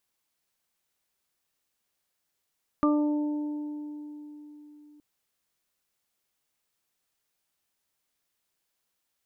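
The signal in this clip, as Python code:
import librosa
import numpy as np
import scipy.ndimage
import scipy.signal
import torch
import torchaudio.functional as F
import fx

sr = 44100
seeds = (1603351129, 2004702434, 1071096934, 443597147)

y = fx.additive(sr, length_s=2.17, hz=297.0, level_db=-20, upper_db=(-8.5, -16.0, -3), decay_s=4.09, upper_decays_s=(1.91, 2.83, 0.4))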